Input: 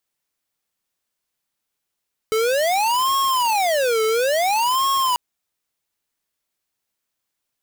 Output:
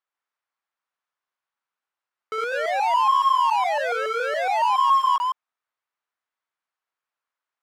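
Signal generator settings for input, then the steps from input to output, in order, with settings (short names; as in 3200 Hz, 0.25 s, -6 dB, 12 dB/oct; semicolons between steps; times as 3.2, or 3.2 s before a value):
siren wail 437–1090 Hz 0.58/s square -19 dBFS 2.84 s
reverse delay 0.14 s, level -2 dB; band-pass 1200 Hz, Q 1.5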